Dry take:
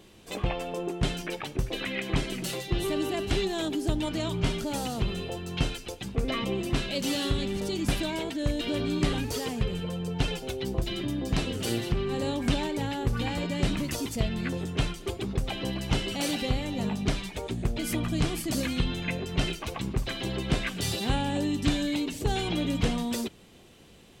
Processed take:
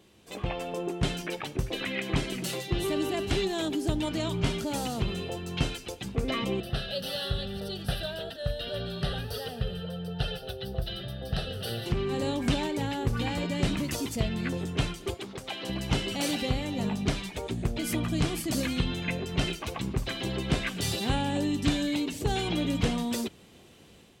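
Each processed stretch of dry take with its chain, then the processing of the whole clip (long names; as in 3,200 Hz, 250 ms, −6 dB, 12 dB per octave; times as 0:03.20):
0:06.60–0:11.86: phaser with its sweep stopped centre 1,500 Hz, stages 8 + single-tap delay 143 ms −17 dB
0:15.14–0:15.69: high-pass filter 610 Hz 6 dB per octave + notch filter 2,600 Hz, Q 27 + highs frequency-modulated by the lows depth 0.15 ms
whole clip: high-pass filter 44 Hz; automatic gain control gain up to 5.5 dB; level −5.5 dB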